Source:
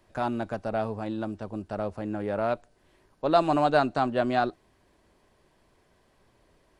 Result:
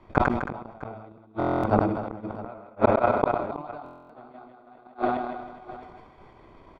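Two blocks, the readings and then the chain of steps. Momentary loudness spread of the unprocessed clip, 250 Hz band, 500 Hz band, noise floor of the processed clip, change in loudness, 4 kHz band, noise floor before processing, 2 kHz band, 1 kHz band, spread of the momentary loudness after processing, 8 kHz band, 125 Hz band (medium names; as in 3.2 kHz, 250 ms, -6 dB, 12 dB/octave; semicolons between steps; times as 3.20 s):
11 LU, +1.0 dB, +0.5 dB, -54 dBFS, +1.5 dB, under -10 dB, -66 dBFS, +0.5 dB, +1.0 dB, 19 LU, no reading, +4.0 dB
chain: backward echo that repeats 207 ms, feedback 44%, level -4.5 dB; thinning echo 159 ms, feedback 23%, high-pass 300 Hz, level -3 dB; inverted gate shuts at -21 dBFS, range -36 dB; transient shaper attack +9 dB, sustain -8 dB; low-pass 2.7 kHz 12 dB/octave; peaking EQ 530 Hz +8 dB 1.6 oct; comb 0.9 ms, depth 58%; multi-tap echo 102/257/322/656 ms -19.5/-19/-20/-16.5 dB; buffer glitch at 1.38/3.84 s, samples 1024, times 10; decay stretcher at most 48 dB/s; trim +5 dB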